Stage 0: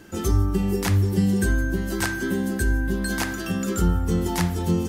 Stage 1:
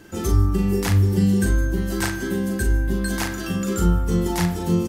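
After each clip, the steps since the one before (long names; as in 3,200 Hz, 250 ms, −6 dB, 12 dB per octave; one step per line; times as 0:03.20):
double-tracking delay 40 ms −6 dB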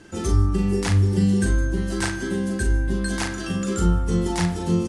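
elliptic low-pass filter 10,000 Hz, stop band 80 dB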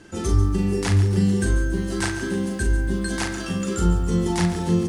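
feedback echo at a low word length 140 ms, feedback 55%, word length 8 bits, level −12 dB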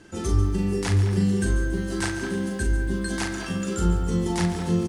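far-end echo of a speakerphone 210 ms, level −10 dB
level −2.5 dB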